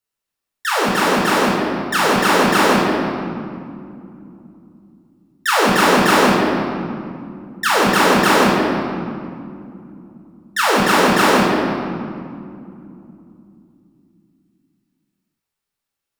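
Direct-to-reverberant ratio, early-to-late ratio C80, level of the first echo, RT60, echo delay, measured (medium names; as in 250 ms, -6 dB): -4.5 dB, 1.5 dB, no echo, 2.6 s, no echo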